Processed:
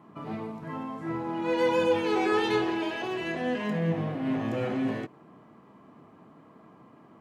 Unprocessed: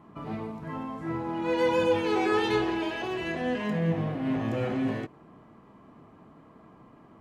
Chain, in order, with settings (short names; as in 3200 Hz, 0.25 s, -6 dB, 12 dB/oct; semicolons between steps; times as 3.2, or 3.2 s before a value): HPF 120 Hz 12 dB/oct